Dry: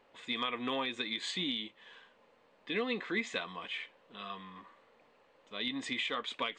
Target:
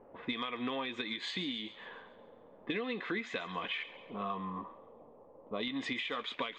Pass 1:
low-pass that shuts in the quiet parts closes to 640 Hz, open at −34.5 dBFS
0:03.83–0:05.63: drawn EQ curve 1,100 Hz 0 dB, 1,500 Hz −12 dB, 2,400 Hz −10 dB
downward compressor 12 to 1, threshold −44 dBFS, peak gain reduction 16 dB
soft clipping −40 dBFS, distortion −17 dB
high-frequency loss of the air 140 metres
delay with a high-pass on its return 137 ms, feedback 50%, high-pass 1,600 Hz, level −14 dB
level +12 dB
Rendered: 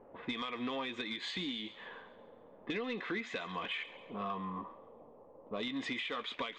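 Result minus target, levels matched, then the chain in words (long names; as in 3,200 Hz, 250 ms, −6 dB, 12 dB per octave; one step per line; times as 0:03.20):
soft clipping: distortion +16 dB
low-pass that shuts in the quiet parts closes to 640 Hz, open at −34.5 dBFS
0:03.83–0:05.63: drawn EQ curve 1,100 Hz 0 dB, 1,500 Hz −12 dB, 2,400 Hz −10 dB
downward compressor 12 to 1, threshold −44 dBFS, peak gain reduction 16 dB
soft clipping −30 dBFS, distortion −33 dB
high-frequency loss of the air 140 metres
delay with a high-pass on its return 137 ms, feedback 50%, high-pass 1,600 Hz, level −14 dB
level +12 dB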